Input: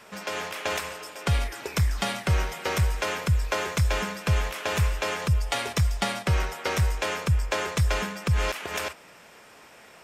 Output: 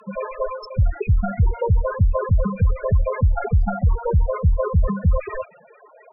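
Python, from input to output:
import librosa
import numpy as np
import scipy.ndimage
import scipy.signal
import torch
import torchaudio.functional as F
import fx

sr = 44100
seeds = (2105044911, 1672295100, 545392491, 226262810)

p1 = fx.tracing_dist(x, sr, depth_ms=0.22)
p2 = fx.spec_topn(p1, sr, count=4)
p3 = fx.over_compress(p2, sr, threshold_db=-27.0, ratio=-1.0)
p4 = p2 + (p3 * 10.0 ** (1.0 / 20.0))
p5 = fx.stretch_grains(p4, sr, factor=0.61, grain_ms=47.0)
p6 = fx.env_lowpass_down(p5, sr, base_hz=2100.0, full_db=-19.0)
y = p6 * 10.0 ** (5.0 / 20.0)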